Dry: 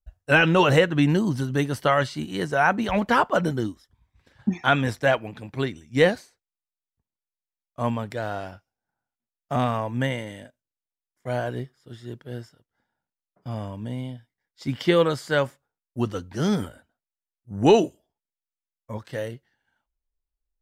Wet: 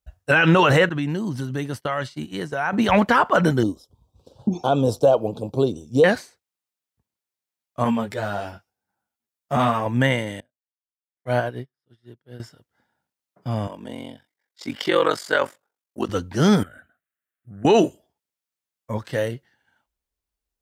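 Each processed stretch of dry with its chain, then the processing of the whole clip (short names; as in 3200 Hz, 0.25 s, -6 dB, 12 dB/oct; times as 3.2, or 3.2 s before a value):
0.89–2.73 expander -28 dBFS + compressor 2.5:1, threshold -34 dBFS
3.63–6.04 compressor 2.5:1, threshold -25 dBFS + Butterworth band-stop 1900 Hz, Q 0.68 + bell 490 Hz +9.5 dB 0.84 oct
7.84–9.86 high shelf 8900 Hz +4.5 dB + ensemble effect
10.4–12.4 bell 7200 Hz -12.5 dB 0.24 oct + upward expander 2.5:1, over -45 dBFS
13.67–16.09 HPF 320 Hz + ring modulator 23 Hz
16.63–17.65 band shelf 1100 Hz +11.5 dB + compressor 3:1, threshold -46 dBFS + fixed phaser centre 2200 Hz, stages 4
whole clip: HPF 65 Hz; dynamic EQ 1400 Hz, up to +5 dB, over -32 dBFS, Q 0.85; maximiser +12.5 dB; gain -6 dB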